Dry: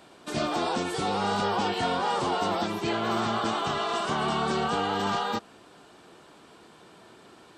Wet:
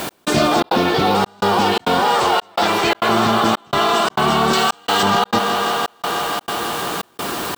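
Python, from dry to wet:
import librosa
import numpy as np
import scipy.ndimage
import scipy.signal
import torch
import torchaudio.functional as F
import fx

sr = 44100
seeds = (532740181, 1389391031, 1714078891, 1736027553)

p1 = fx.quant_dither(x, sr, seeds[0], bits=8, dither='triangular')
p2 = x + F.gain(torch.from_numpy(p1), -7.0).numpy()
p3 = fx.graphic_eq_10(p2, sr, hz=(125, 250, 2000), db=(-9, -7, 3), at=(2.14, 3.09))
p4 = fx.echo_thinned(p3, sr, ms=166, feedback_pct=85, hz=180.0, wet_db=-13.5)
p5 = fx.rider(p4, sr, range_db=5, speed_s=0.5)
p6 = fx.lowpass(p5, sr, hz=4900.0, slope=24, at=(0.6, 1.15))
p7 = fx.tilt_eq(p6, sr, slope=3.0, at=(4.53, 5.03))
p8 = fx.mod_noise(p7, sr, seeds[1], snr_db=26)
p9 = fx.step_gate(p8, sr, bpm=169, pattern='x..xxxx.xxxxx', floor_db=-60.0, edge_ms=4.5)
p10 = fx.env_flatten(p9, sr, amount_pct=50)
y = F.gain(torch.from_numpy(p10), 7.0).numpy()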